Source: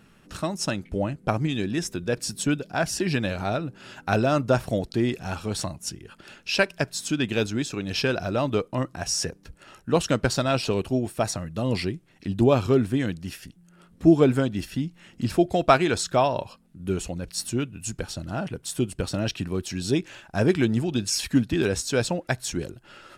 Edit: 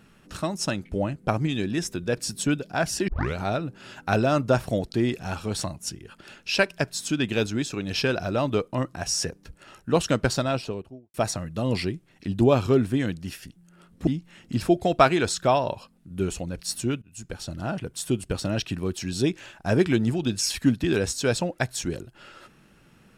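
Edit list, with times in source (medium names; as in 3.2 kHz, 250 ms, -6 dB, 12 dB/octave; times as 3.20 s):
3.08 s: tape start 0.27 s
10.26–11.14 s: studio fade out
14.07–14.76 s: delete
17.71–18.22 s: fade in, from -22.5 dB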